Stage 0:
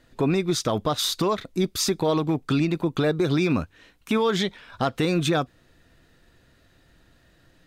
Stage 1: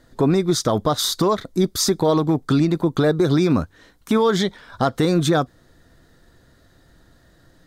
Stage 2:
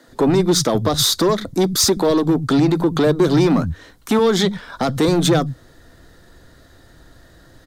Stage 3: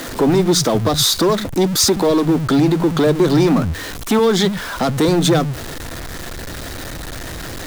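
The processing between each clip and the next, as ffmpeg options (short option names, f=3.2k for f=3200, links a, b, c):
-af "equalizer=f=2.6k:t=o:w=0.48:g=-13,volume=5dB"
-filter_complex "[0:a]acrossover=split=440|3000[a][b][c];[b]acompressor=threshold=-24dB:ratio=6[d];[a][d][c]amix=inputs=3:normalize=0,asoftclip=type=tanh:threshold=-15dB,acrossover=split=170[e][f];[e]adelay=80[g];[g][f]amix=inputs=2:normalize=0,volume=7dB"
-af "aeval=exprs='val(0)+0.5*0.0668*sgn(val(0))':c=same"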